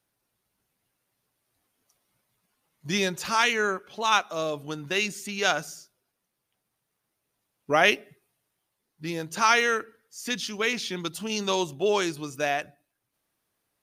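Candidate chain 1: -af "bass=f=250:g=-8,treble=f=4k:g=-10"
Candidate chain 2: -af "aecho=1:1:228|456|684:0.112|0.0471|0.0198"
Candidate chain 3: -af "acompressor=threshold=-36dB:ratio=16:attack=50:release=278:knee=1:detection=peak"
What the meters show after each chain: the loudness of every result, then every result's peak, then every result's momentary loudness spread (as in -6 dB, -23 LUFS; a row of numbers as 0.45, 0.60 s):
-27.0, -26.0, -37.5 LUFS; -6.5, -6.0, -20.5 dBFS; 13, 14, 8 LU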